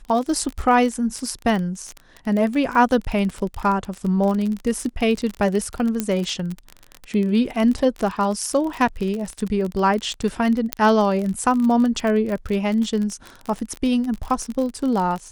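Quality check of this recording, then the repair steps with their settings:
surface crackle 31 per second −24 dBFS
0:06.00: click −8 dBFS
0:10.73: click −2 dBFS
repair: click removal

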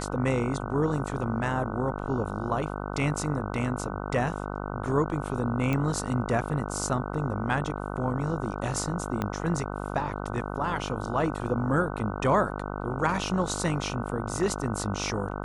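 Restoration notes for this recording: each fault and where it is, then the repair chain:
mains buzz 50 Hz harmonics 30 −34 dBFS
0:05.73: click −16 dBFS
0:09.22: click −15 dBFS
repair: click removal
hum removal 50 Hz, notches 30

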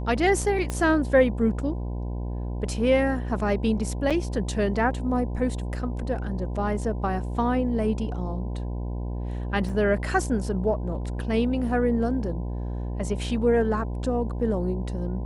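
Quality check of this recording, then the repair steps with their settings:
mains buzz 60 Hz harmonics 17 −30 dBFS
0:00.70: click −15 dBFS
0:04.10–0:04.11: drop-out 6.3 ms
0:09.69: drop-out 3.5 ms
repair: click removal
hum removal 60 Hz, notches 17
repair the gap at 0:04.10, 6.3 ms
repair the gap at 0:09.69, 3.5 ms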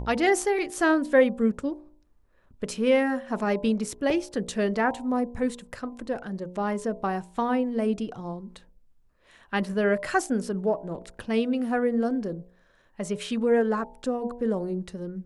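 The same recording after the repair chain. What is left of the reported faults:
0:00.70: click

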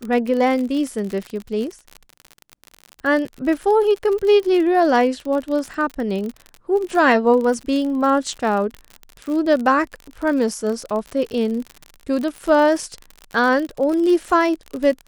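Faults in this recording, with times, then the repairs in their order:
surface crackle 54 per second −25 dBFS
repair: click removal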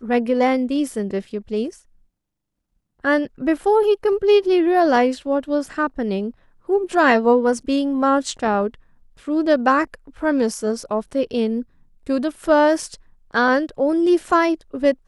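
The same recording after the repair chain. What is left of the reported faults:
none of them is left

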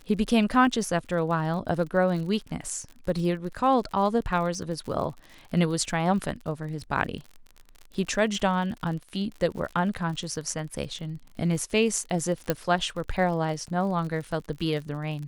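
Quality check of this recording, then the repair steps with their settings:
surface crackle 52 per second −35 dBFS
0:12.50: click −10 dBFS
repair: click removal

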